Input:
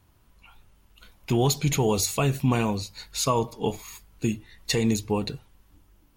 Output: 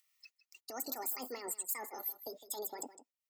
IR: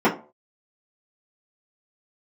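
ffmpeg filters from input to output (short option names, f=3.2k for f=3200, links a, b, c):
-filter_complex "[0:a]highpass=f=170:w=0.5412,highpass=f=170:w=1.3066,agate=range=-32dB:threshold=-55dB:ratio=16:detection=peak,afftdn=nr=24:nf=-37,areverse,acompressor=threshold=-37dB:ratio=6,areverse,alimiter=level_in=13.5dB:limit=-24dB:level=0:latency=1:release=118,volume=-13.5dB,acrossover=split=630[a][b];[a]tremolo=f=4.7:d=0.57[c];[b]acompressor=mode=upward:threshold=-54dB:ratio=2.5[d];[c][d]amix=inputs=2:normalize=0,crystalizer=i=2.5:c=0,asetrate=82467,aresample=44100,asuperstop=centerf=1600:order=4:qfactor=4.3,aecho=1:1:158:0.188,volume=4dB"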